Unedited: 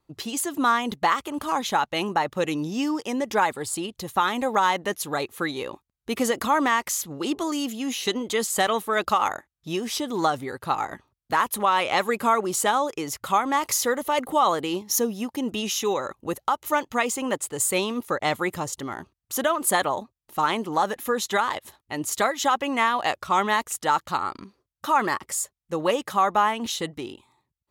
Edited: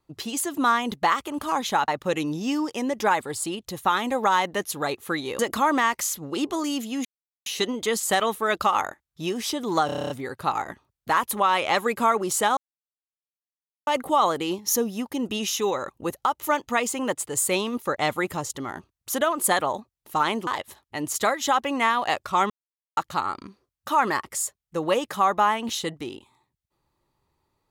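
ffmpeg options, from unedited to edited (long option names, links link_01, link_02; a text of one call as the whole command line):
ffmpeg -i in.wav -filter_complex "[0:a]asplit=17[link_01][link_02][link_03][link_04][link_05][link_06][link_07][link_08][link_09][link_10][link_11][link_12][link_13][link_14][link_15][link_16][link_17];[link_01]atrim=end=1.882[link_18];[link_02]atrim=start=2.188:end=5.702[link_19];[link_03]atrim=start=6.268:end=7.93,asetpts=PTS-STARTPTS,afade=type=out:start_time=1.658:duration=0.004:curve=hsin,apad=pad_dur=0.41[link_20];[link_04]atrim=start=7.93:end=10.362,asetpts=PTS-STARTPTS,afade=type=in:duration=0.004:curve=hsin[link_21];[link_05]atrim=start=10.328:end=10.362[link_22];[link_06]atrim=start=10.328:end=10.362[link_23];[link_07]atrim=start=10.328:end=10.362[link_24];[link_08]atrim=start=10.328:end=10.362[link_25];[link_09]atrim=start=10.328:end=10.362[link_26];[link_10]atrim=start=10.328:end=10.362[link_27];[link_11]atrim=start=10.328:end=10.362[link_28];[link_12]atrim=start=10.328:end=12.8,asetpts=PTS-STARTPTS,afade=type=out:start_time=2.468:duration=0.004:curve=hsin[link_29];[link_13]atrim=start=12.8:end=14.1,asetpts=PTS-STARTPTS,volume=0[link_30];[link_14]atrim=start=14.1:end=20.702,asetpts=PTS-STARTPTS,afade=type=in:duration=0.004:curve=hsin[link_31];[link_15]atrim=start=21.438:end=23.47,asetpts=PTS-STARTPTS,afade=type=out:start_time=2.028:duration=0.004:curve=hsin[link_32];[link_16]atrim=start=23.47:end=23.94,asetpts=PTS-STARTPTS,volume=0[link_33];[link_17]atrim=start=23.94,asetpts=PTS-STARTPTS,afade=type=in:duration=0.004:curve=hsin[link_34];[link_18][link_19]acrossfade=duration=0.004:curve1=hsin:curve2=hsin[link_35];[link_20][link_21]concat=n=2:v=0:a=1[link_36];[link_35][link_36]acrossfade=duration=0.004:curve1=hsin:curve2=hsin[link_37];[link_37][link_22]acrossfade=duration=0.004:curve1=hsin:curve2=hsin[link_38];[link_38][link_23]acrossfade=duration=0.004:curve1=hsin:curve2=hsin[link_39];[link_39][link_24]acrossfade=duration=0.004:curve1=hsin:curve2=hsin[link_40];[link_40][link_25]acrossfade=duration=0.004:curve1=hsin:curve2=hsin[link_41];[link_41][link_26]acrossfade=duration=0.004:curve1=hsin:curve2=hsin[link_42];[link_42][link_27]acrossfade=duration=0.004:curve1=hsin:curve2=hsin[link_43];[link_43][link_28]acrossfade=duration=0.004:curve1=hsin:curve2=hsin[link_44];[link_29][link_30][link_31]concat=n=3:v=0:a=1[link_45];[link_44][link_45]acrossfade=duration=0.004:curve1=hsin:curve2=hsin[link_46];[link_32][link_33][link_34]concat=n=3:v=0:a=1[link_47];[link_46][link_47]acrossfade=duration=0.004:curve1=hsin:curve2=hsin" out.wav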